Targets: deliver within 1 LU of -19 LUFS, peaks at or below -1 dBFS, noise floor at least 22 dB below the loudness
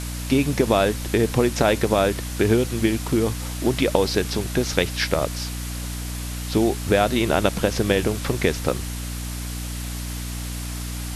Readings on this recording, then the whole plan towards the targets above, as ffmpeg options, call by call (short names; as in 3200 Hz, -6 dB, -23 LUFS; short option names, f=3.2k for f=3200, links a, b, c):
hum 60 Hz; harmonics up to 300 Hz; hum level -28 dBFS; noise floor -30 dBFS; noise floor target -45 dBFS; loudness -23.0 LUFS; peak -1.5 dBFS; loudness target -19.0 LUFS
-> -af "bandreject=f=60:t=h:w=4,bandreject=f=120:t=h:w=4,bandreject=f=180:t=h:w=4,bandreject=f=240:t=h:w=4,bandreject=f=300:t=h:w=4"
-af "afftdn=nr=15:nf=-30"
-af "volume=4dB,alimiter=limit=-1dB:level=0:latency=1"